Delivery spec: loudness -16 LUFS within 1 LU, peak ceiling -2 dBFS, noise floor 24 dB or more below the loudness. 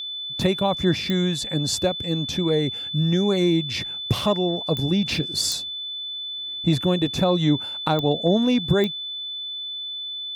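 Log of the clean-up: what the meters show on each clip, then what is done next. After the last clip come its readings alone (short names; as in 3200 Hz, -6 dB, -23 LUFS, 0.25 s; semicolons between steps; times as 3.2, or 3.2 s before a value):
clicks 5; steady tone 3500 Hz; tone level -29 dBFS; loudness -23.0 LUFS; peak -9.5 dBFS; loudness target -16.0 LUFS
-> de-click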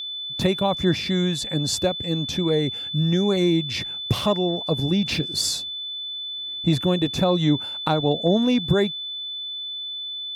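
clicks 0; steady tone 3500 Hz; tone level -29 dBFS
-> notch 3500 Hz, Q 30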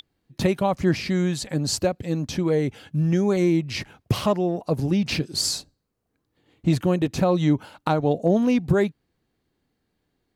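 steady tone none; loudness -23.5 LUFS; peak -10.0 dBFS; loudness target -16.0 LUFS
-> gain +7.5 dB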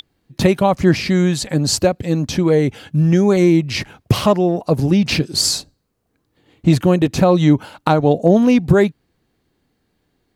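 loudness -16.0 LUFS; peak -2.5 dBFS; noise floor -68 dBFS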